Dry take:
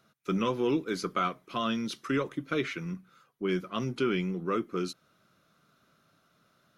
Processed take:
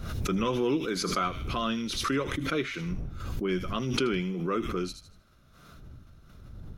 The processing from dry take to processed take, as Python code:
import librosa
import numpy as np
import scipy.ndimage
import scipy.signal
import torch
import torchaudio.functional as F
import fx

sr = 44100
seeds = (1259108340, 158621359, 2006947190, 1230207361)

y = fx.dmg_wind(x, sr, seeds[0], corner_hz=98.0, level_db=-46.0)
y = fx.echo_wet_highpass(y, sr, ms=79, feedback_pct=33, hz=3100.0, wet_db=-6.5)
y = fx.pre_swell(y, sr, db_per_s=35.0)